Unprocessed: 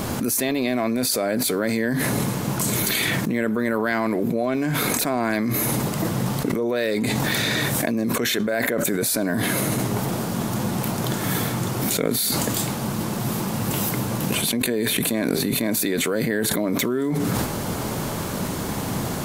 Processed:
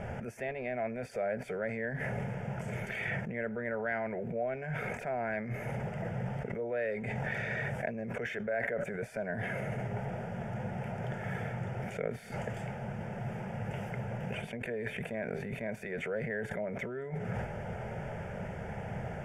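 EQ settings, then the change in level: LPF 2400 Hz 12 dB/oct; fixed phaser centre 1100 Hz, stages 6; -8.0 dB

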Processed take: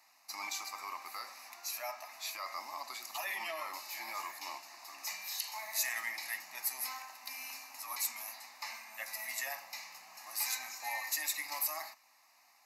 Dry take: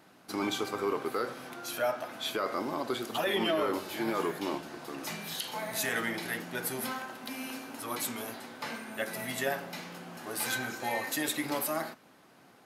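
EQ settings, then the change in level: HPF 980 Hz 12 dB/oct; bell 10000 Hz +14 dB 1 oct; fixed phaser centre 2200 Hz, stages 8; -1.5 dB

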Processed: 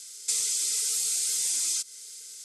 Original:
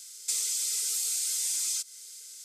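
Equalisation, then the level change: brick-wall FIR low-pass 12000 Hz; bell 150 Hz +13 dB 0.37 oct; low shelf 280 Hz +11 dB; +2.5 dB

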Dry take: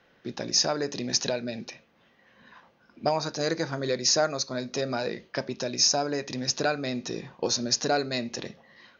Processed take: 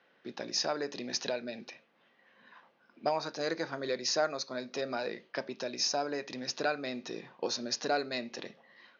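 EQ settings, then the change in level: BPF 200–4300 Hz; low shelf 450 Hz -4 dB; -3.5 dB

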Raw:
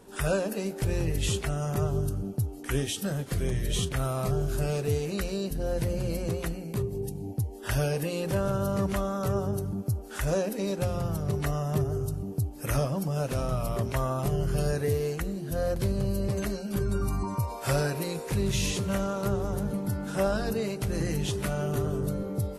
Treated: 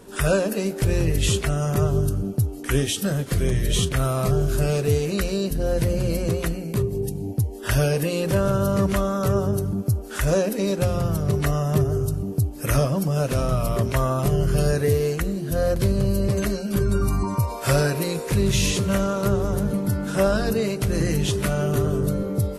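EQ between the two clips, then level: bell 820 Hz -6 dB 0.26 oct; +7.0 dB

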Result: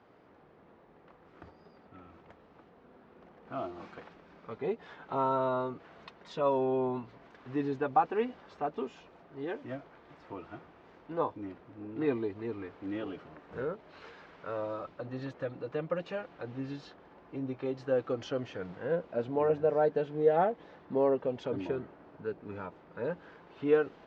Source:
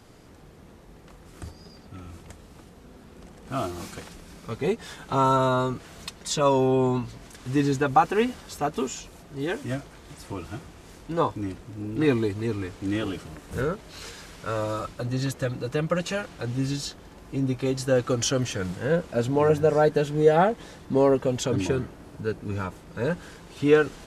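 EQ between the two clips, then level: dynamic EQ 1400 Hz, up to -5 dB, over -40 dBFS, Q 0.95; band-pass 890 Hz, Q 0.56; air absorption 200 m; -3.5 dB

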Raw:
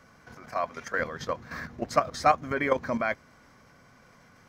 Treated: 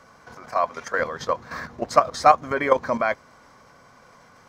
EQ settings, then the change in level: ten-band EQ 500 Hz +5 dB, 1000 Hz +8 dB, 4000 Hz +4 dB, 8000 Hz +5 dB; 0.0 dB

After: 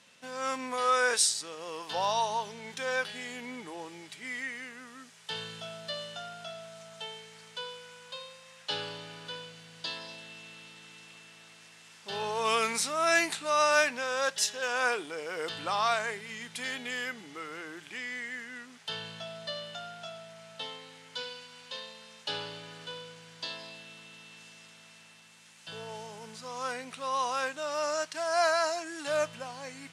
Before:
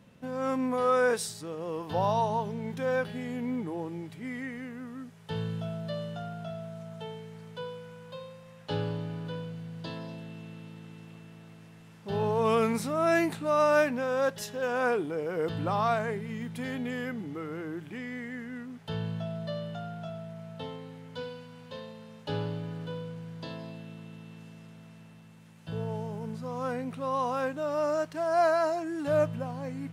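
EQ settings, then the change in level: weighting filter ITU-R 468; 0.0 dB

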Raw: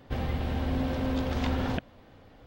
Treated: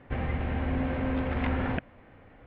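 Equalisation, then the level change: synth low-pass 2200 Hz, resonance Q 2.1; air absorption 200 m; 0.0 dB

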